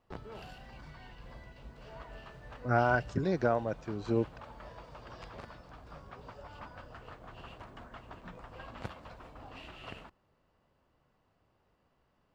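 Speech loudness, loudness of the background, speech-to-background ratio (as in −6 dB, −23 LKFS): −31.5 LKFS, −49.5 LKFS, 18.0 dB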